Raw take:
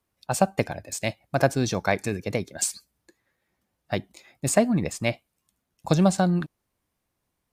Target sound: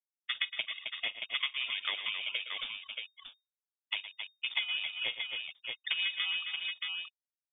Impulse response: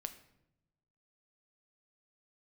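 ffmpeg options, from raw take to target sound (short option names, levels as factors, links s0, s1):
-filter_complex "[0:a]aeval=exprs='val(0)*sin(2*PI*970*n/s)':c=same,afftfilt=real='re*gte(hypot(re,im),0.0316)':imag='im*gte(hypot(re,im),0.0316)':win_size=1024:overlap=0.75,asplit=2[s0][s1];[s1]acrusher=samples=35:mix=1:aa=0.000001:lfo=1:lforange=21:lforate=2.5,volume=0.355[s2];[s0][s2]amix=inputs=2:normalize=0,lowpass=f=3100:t=q:w=0.5098,lowpass=f=3100:t=q:w=0.6013,lowpass=f=3100:t=q:w=0.9,lowpass=f=3100:t=q:w=2.563,afreqshift=-3700,aecho=1:1:41|112|266|627:0.112|0.2|0.237|0.266,acompressor=threshold=0.02:ratio=3"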